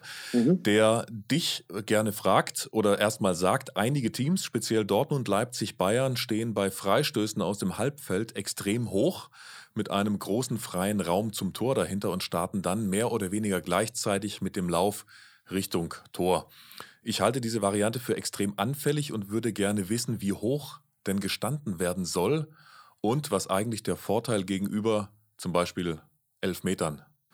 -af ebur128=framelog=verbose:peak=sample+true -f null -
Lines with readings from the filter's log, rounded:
Integrated loudness:
  I:         -28.5 LUFS
  Threshold: -38.8 LUFS
Loudness range:
  LRA:         3.8 LU
  Threshold: -48.9 LUFS
  LRA low:   -30.4 LUFS
  LRA high:  -26.6 LUFS
Sample peak:
  Peak:       -8.2 dBFS
True peak:
  Peak:       -8.1 dBFS